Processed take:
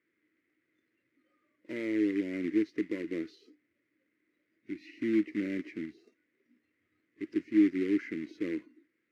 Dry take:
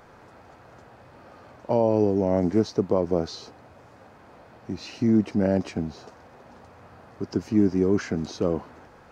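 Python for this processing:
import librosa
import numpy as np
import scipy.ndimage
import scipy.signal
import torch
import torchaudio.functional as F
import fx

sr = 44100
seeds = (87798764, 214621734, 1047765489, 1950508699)

y = fx.quant_companded(x, sr, bits=4)
y = fx.noise_reduce_blind(y, sr, reduce_db=16)
y = fx.double_bandpass(y, sr, hz=800.0, octaves=2.7)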